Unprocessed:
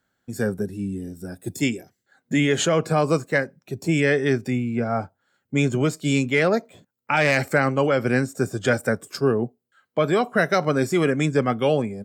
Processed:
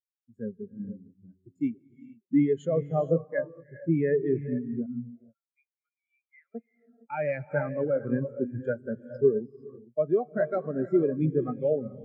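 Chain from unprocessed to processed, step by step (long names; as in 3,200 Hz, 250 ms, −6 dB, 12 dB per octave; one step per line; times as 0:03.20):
bit reduction 7 bits
0:04.86–0:06.55: four-pole ladder band-pass 2,100 Hz, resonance 35%
reverb whose tail is shaped and stops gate 490 ms rising, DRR 4 dB
every bin expanded away from the loudest bin 2.5 to 1
level −6 dB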